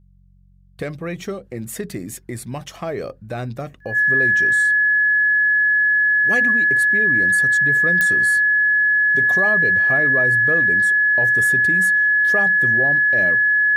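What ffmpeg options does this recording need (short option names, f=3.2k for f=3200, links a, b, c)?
-af "adeclick=t=4,bandreject=f=46:t=h:w=4,bandreject=f=92:t=h:w=4,bandreject=f=138:t=h:w=4,bandreject=f=184:t=h:w=4,bandreject=f=1.7k:w=30"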